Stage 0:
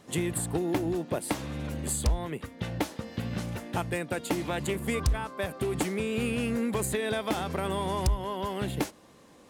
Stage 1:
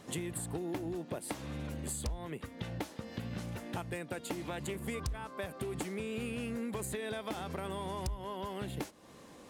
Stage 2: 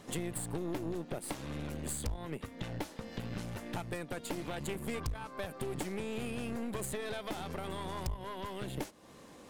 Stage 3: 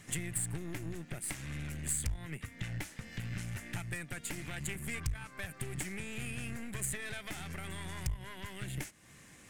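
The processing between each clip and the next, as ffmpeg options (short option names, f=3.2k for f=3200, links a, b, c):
-af "acompressor=threshold=-42dB:ratio=2.5,volume=1.5dB"
-af "aeval=exprs='(tanh(50.1*val(0)+0.75)-tanh(0.75))/50.1':c=same,volume=4.5dB"
-af "equalizer=f=125:t=o:w=1:g=4,equalizer=f=250:t=o:w=1:g=-6,equalizer=f=500:t=o:w=1:g=-11,equalizer=f=1k:t=o:w=1:g=-9,equalizer=f=2k:t=o:w=1:g=8,equalizer=f=4k:t=o:w=1:g=-6,equalizer=f=8k:t=o:w=1:g=6,volume=1dB"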